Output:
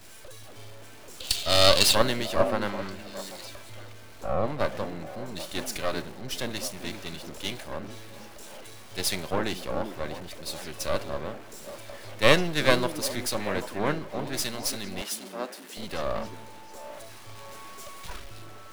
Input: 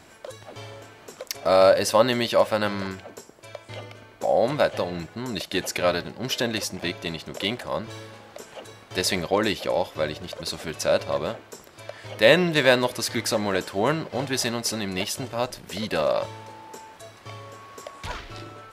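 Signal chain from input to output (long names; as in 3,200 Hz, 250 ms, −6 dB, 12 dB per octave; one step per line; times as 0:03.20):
converter with a step at zero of −28 dBFS
0:01.20–0:01.95: flat-topped bell 3,500 Hz +14 dB 1 octave
0:17.34–0:18.18: comb filter 5.3 ms, depth 50%
dynamic equaliser 9,800 Hz, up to +6 dB, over −51 dBFS, Q 5.8
in parallel at 0 dB: downward compressor, threshold −28 dBFS, peak gain reduction 17 dB
on the sum: half-wave rectification
0:15.01–0:15.77: Butterworth high-pass 200 Hz
on a send: echo through a band-pass that steps 395 ms, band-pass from 270 Hz, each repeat 1.4 octaves, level −3 dB
on the sum: multiband upward and downward expander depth 100%
level −8 dB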